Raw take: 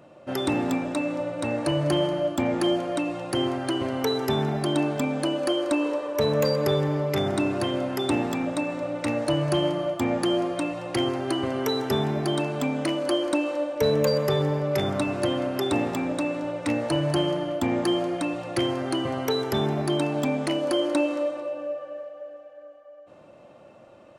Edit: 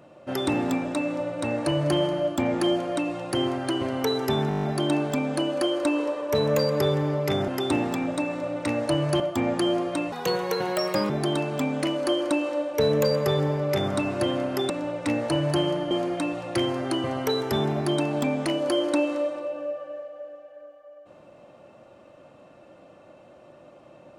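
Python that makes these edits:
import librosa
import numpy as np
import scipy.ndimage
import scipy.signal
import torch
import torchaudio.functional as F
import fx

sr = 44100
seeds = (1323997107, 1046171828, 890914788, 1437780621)

y = fx.edit(x, sr, fx.stutter(start_s=4.49, slice_s=0.02, count=8),
    fx.cut(start_s=7.34, length_s=0.53),
    fx.cut(start_s=9.59, length_s=0.25),
    fx.speed_span(start_s=10.76, length_s=1.36, speed=1.39),
    fx.cut(start_s=15.72, length_s=0.58),
    fx.cut(start_s=17.51, length_s=0.41), tone=tone)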